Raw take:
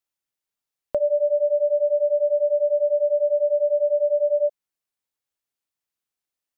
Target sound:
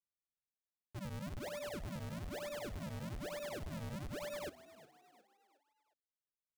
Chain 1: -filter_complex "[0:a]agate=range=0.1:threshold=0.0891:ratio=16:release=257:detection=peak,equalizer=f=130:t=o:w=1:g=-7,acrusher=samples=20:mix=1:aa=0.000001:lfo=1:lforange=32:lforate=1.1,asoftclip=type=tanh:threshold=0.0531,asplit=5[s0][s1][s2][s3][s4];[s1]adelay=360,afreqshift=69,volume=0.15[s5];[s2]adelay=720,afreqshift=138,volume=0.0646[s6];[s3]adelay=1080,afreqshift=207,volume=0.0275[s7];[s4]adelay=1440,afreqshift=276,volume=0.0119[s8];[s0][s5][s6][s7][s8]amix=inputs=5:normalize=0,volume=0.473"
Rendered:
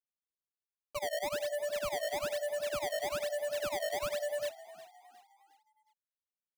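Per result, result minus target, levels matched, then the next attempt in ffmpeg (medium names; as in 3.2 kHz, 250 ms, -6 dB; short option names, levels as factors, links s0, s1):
decimation with a swept rate: distortion -14 dB; saturation: distortion -5 dB
-filter_complex "[0:a]agate=range=0.1:threshold=0.0891:ratio=16:release=257:detection=peak,equalizer=f=130:t=o:w=1:g=-7,acrusher=samples=71:mix=1:aa=0.000001:lfo=1:lforange=114:lforate=1.1,asoftclip=type=tanh:threshold=0.0531,asplit=5[s0][s1][s2][s3][s4];[s1]adelay=360,afreqshift=69,volume=0.15[s5];[s2]adelay=720,afreqshift=138,volume=0.0646[s6];[s3]adelay=1080,afreqshift=207,volume=0.0275[s7];[s4]adelay=1440,afreqshift=276,volume=0.0119[s8];[s0][s5][s6][s7][s8]amix=inputs=5:normalize=0,volume=0.473"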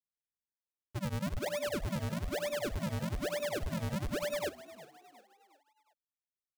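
saturation: distortion -5 dB
-filter_complex "[0:a]agate=range=0.1:threshold=0.0891:ratio=16:release=257:detection=peak,equalizer=f=130:t=o:w=1:g=-7,acrusher=samples=71:mix=1:aa=0.000001:lfo=1:lforange=114:lforate=1.1,asoftclip=type=tanh:threshold=0.0168,asplit=5[s0][s1][s2][s3][s4];[s1]adelay=360,afreqshift=69,volume=0.15[s5];[s2]adelay=720,afreqshift=138,volume=0.0646[s6];[s3]adelay=1080,afreqshift=207,volume=0.0275[s7];[s4]adelay=1440,afreqshift=276,volume=0.0119[s8];[s0][s5][s6][s7][s8]amix=inputs=5:normalize=0,volume=0.473"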